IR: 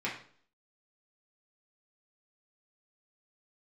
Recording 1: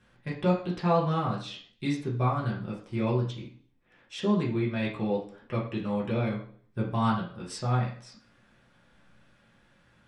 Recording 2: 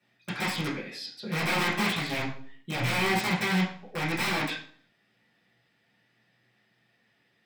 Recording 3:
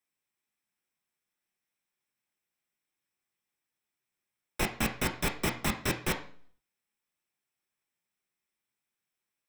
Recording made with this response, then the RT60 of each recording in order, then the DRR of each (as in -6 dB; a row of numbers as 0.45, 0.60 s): 1; 0.50, 0.50, 0.50 s; -6.0, -11.0, 3.5 dB